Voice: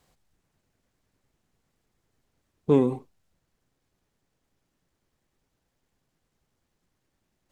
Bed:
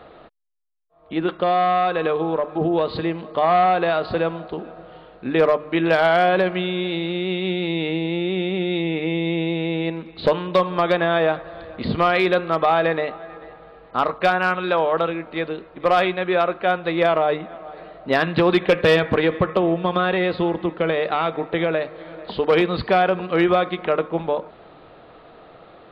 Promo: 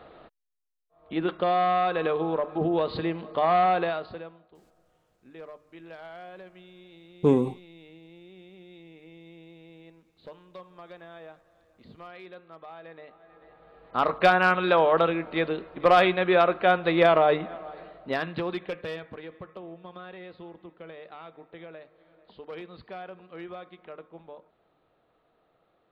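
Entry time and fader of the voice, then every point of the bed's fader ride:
4.55 s, -0.5 dB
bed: 3.8 s -5 dB
4.46 s -27 dB
12.82 s -27 dB
14.16 s -1 dB
17.49 s -1 dB
19.16 s -23 dB

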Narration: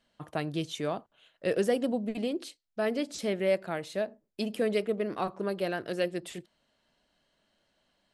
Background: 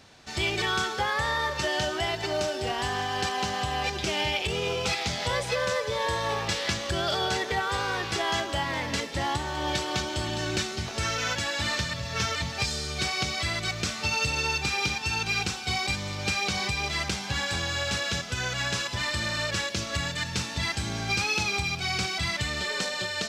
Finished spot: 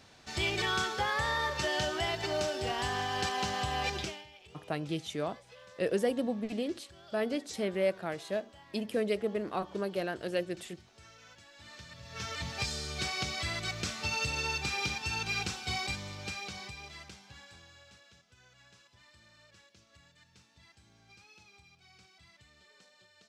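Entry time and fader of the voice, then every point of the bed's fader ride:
4.35 s, -2.5 dB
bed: 4.01 s -4 dB
4.27 s -27 dB
11.51 s -27 dB
12.49 s -6 dB
15.79 s -6 dB
18.14 s -31.5 dB

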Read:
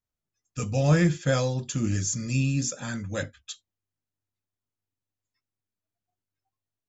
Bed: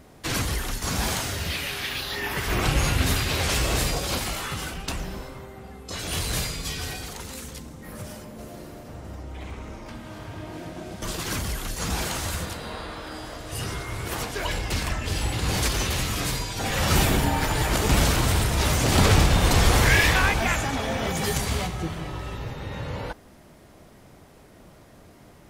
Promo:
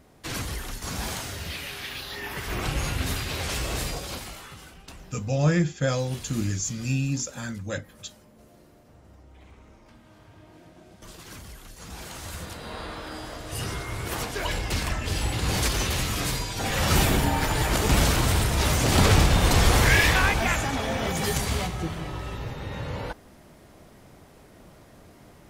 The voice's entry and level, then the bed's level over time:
4.55 s, -1.0 dB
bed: 3.93 s -5.5 dB
4.63 s -14 dB
11.85 s -14 dB
12.84 s -0.5 dB

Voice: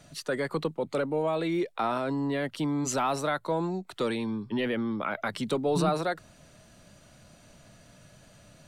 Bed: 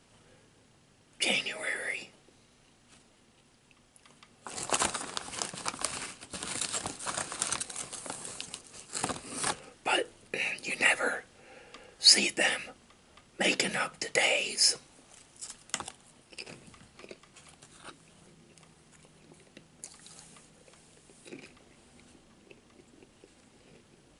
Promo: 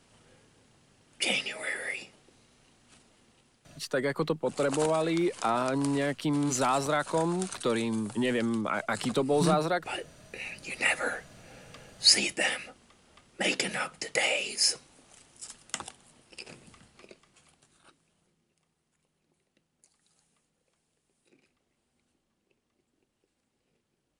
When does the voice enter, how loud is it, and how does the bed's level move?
3.65 s, +1.0 dB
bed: 3.31 s 0 dB
3.93 s -8 dB
10.38 s -8 dB
10.94 s -1 dB
16.74 s -1 dB
18.59 s -18.5 dB

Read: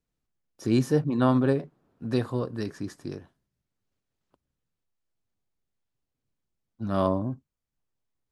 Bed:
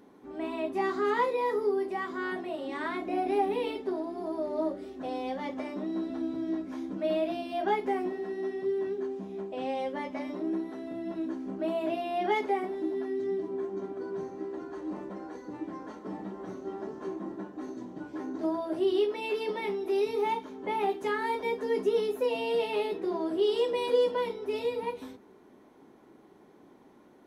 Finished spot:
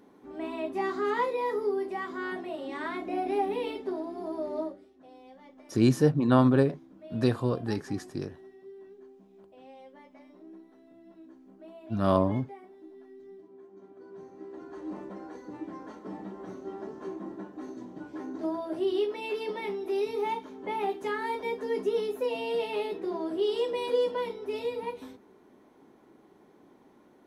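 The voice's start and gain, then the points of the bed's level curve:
5.10 s, +1.0 dB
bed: 4.58 s -1 dB
4.9 s -17.5 dB
13.64 s -17.5 dB
14.86 s -1.5 dB

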